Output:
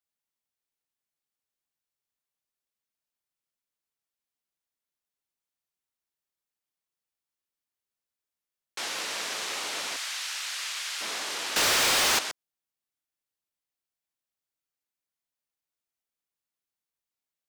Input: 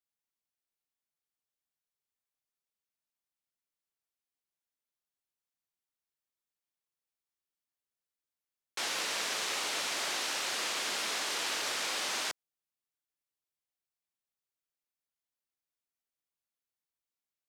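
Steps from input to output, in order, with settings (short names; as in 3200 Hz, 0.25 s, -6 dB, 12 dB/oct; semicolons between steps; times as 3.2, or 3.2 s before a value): 9.96–11.01 HPF 1400 Hz 12 dB/oct; 11.56–12.19 sample leveller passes 5; gain +1 dB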